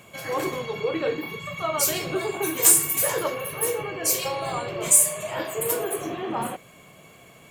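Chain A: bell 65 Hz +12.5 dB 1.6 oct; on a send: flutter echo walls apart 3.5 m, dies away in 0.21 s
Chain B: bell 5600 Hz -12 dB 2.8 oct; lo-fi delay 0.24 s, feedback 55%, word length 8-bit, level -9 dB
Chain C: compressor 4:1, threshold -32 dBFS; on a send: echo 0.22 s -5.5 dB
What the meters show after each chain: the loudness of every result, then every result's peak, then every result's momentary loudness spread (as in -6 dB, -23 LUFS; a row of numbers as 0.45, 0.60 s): -21.5, -28.0, -32.5 LUFS; -1.0, -10.0, -17.5 dBFS; 14, 8, 7 LU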